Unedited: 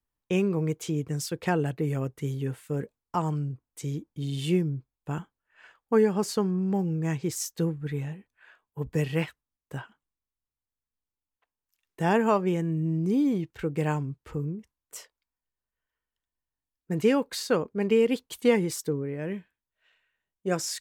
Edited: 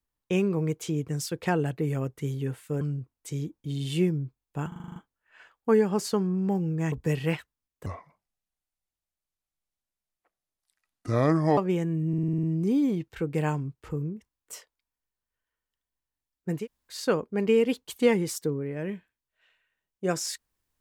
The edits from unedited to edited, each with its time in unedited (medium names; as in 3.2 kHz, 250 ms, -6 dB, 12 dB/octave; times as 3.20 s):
2.81–3.33 s: delete
5.20 s: stutter 0.04 s, 8 plays
7.16–8.81 s: delete
9.75–12.35 s: speed 70%
12.86 s: stutter 0.05 s, 8 plays
17.02–17.38 s: room tone, crossfade 0.16 s